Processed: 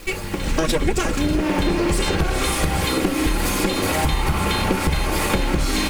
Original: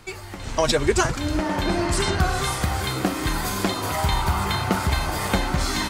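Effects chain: minimum comb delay 3.6 ms; in parallel at -1 dB: limiter -19.5 dBFS, peak gain reduction 11 dB; on the sum: fifteen-band EQ 160 Hz +8 dB, 400 Hz +10 dB, 2500 Hz +6 dB, 10000 Hz +4 dB; bit-crush 7-bit; low shelf 81 Hz +9.5 dB; compressor, threshold -16 dBFS, peak gain reduction 9.5 dB

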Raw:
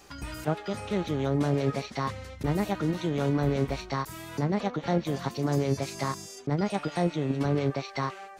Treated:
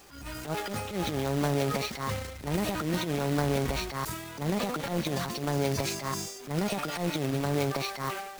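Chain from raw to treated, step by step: self-modulated delay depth 0.066 ms; companded quantiser 4-bit; transient shaper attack -12 dB, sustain +9 dB; gain -1.5 dB

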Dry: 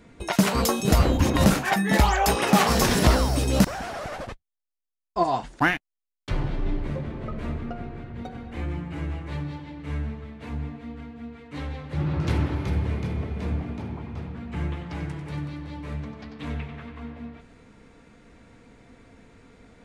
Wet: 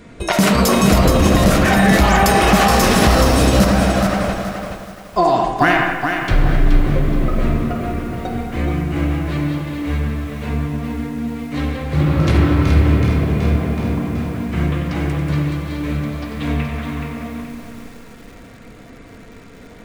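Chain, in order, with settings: notch 870 Hz, Q 12; on a send at -3 dB: reverb RT60 1.3 s, pre-delay 5 ms; on the sum: maximiser +14 dB; lo-fi delay 0.424 s, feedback 35%, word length 6-bit, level -6 dB; gain -4 dB

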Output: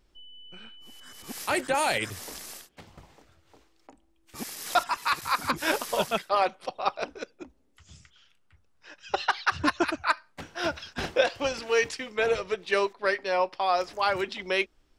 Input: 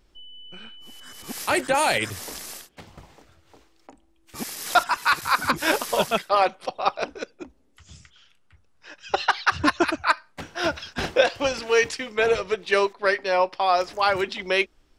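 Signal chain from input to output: 4.73–5.51 notch 1500 Hz, Q 9.5; gain -4.5 dB

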